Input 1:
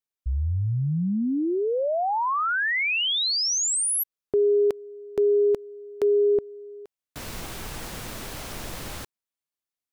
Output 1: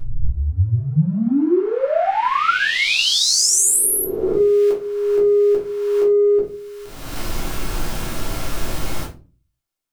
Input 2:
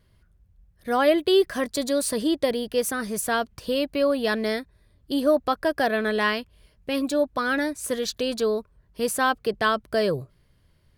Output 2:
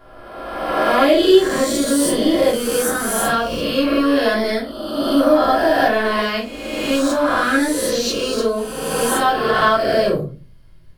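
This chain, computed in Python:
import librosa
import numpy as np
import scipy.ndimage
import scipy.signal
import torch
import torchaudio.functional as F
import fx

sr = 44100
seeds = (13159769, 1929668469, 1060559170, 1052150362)

p1 = fx.spec_swells(x, sr, rise_s=1.52)
p2 = np.clip(p1, -10.0 ** (-23.5 / 20.0), 10.0 ** (-23.5 / 20.0))
p3 = p1 + (p2 * 10.0 ** (-10.5 / 20.0))
p4 = fx.room_shoebox(p3, sr, seeds[0], volume_m3=160.0, walls='furnished', distance_m=3.2)
y = p4 * 10.0 ** (-4.5 / 20.0)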